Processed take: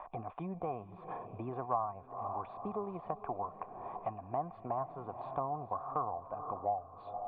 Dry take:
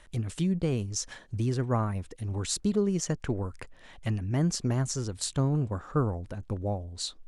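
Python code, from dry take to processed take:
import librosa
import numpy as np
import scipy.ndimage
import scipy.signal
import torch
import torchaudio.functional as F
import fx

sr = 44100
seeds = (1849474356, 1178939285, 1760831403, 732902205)

p1 = fx.formant_cascade(x, sr, vowel='a')
p2 = fx.low_shelf(p1, sr, hz=430.0, db=-9.5)
p3 = p2 + fx.echo_diffused(p2, sr, ms=490, feedback_pct=44, wet_db=-14.0, dry=0)
p4 = fx.band_squash(p3, sr, depth_pct=70)
y = p4 * librosa.db_to_amplitude(15.0)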